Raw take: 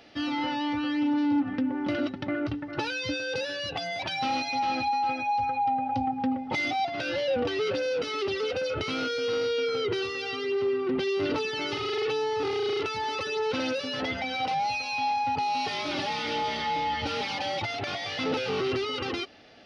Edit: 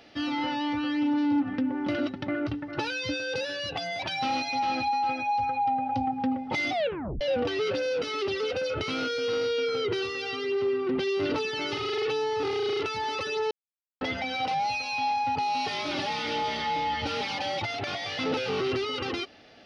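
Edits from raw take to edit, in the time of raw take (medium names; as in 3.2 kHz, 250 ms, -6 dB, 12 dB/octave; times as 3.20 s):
6.72 s: tape stop 0.49 s
13.51–14.01 s: mute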